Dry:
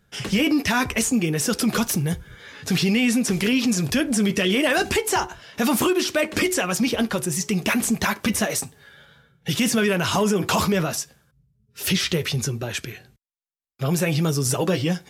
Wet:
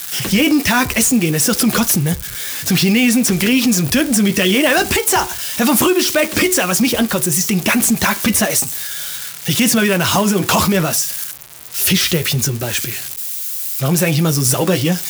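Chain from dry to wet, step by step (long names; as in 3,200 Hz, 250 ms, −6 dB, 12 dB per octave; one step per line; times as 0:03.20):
spike at every zero crossing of −21.5 dBFS
notch filter 430 Hz, Q 12
level +6.5 dB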